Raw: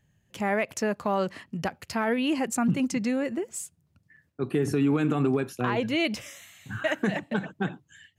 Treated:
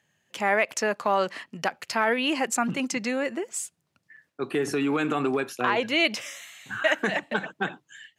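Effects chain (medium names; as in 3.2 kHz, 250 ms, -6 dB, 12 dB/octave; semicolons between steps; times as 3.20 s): frequency weighting A; trim +5 dB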